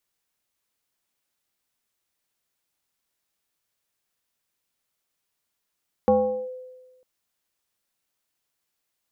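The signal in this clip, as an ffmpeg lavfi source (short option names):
-f lavfi -i "aevalsrc='0.224*pow(10,-3*t/1.28)*sin(2*PI*509*t+0.92*clip(1-t/0.41,0,1)*sin(2*PI*0.58*509*t))':d=0.95:s=44100"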